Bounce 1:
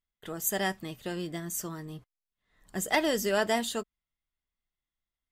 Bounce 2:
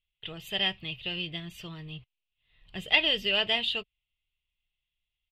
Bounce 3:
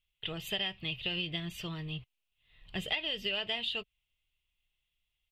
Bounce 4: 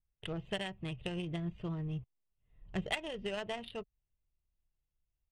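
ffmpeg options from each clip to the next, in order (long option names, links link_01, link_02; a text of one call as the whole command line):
ffmpeg -i in.wav -af "firequalizer=gain_entry='entry(130,0);entry(230,-15);entry(430,-10);entry(1600,-12);entry(2700,13);entry(6400,-26)':delay=0.05:min_phase=1,volume=4.5dB" out.wav
ffmpeg -i in.wav -af "acompressor=threshold=-33dB:ratio=12,volume=2.5dB" out.wav
ffmpeg -i in.wav -af "adynamicequalizer=threshold=0.00631:dfrequency=2800:dqfactor=1.9:tfrequency=2800:tqfactor=1.9:attack=5:release=100:ratio=0.375:range=1.5:mode=cutabove:tftype=bell,adynamicsmooth=sensitivity=2.5:basefreq=680,volume=2.5dB" out.wav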